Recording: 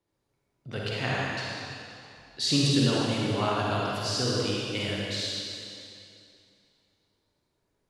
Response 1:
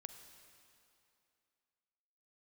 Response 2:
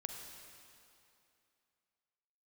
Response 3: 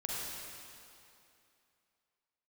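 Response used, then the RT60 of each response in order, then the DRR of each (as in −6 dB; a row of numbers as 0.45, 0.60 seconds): 3; 2.7, 2.7, 2.7 seconds; 7.5, 3.5, −5.0 decibels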